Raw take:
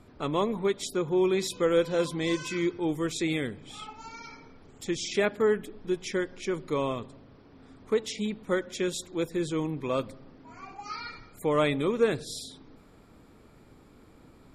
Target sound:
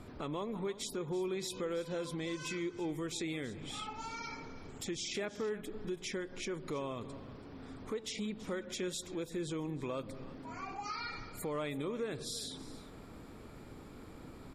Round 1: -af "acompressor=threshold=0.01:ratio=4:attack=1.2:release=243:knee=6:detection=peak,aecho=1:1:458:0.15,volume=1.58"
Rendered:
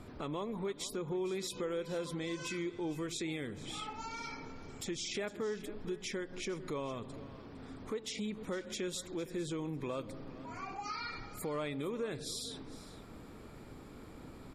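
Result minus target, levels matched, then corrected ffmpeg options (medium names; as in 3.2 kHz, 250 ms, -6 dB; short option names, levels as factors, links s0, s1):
echo 127 ms late
-af "acompressor=threshold=0.01:ratio=4:attack=1.2:release=243:knee=6:detection=peak,aecho=1:1:331:0.15,volume=1.58"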